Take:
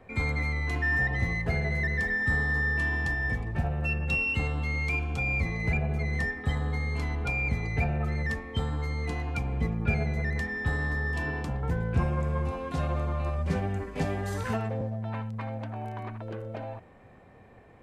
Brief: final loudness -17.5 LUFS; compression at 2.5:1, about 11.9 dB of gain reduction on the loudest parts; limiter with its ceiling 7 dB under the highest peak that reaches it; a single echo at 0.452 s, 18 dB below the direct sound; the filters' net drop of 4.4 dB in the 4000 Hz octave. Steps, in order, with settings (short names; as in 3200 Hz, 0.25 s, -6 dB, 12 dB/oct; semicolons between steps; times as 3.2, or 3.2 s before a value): bell 4000 Hz -6 dB; compressor 2.5:1, threshold -39 dBFS; limiter -31 dBFS; echo 0.452 s -18 dB; gain +22.5 dB